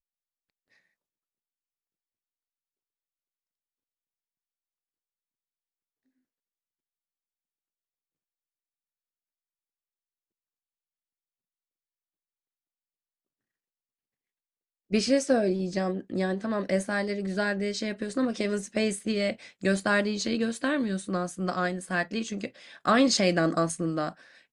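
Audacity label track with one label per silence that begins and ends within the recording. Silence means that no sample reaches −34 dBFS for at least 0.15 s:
19.330000	19.630000	silence
22.470000	22.860000	silence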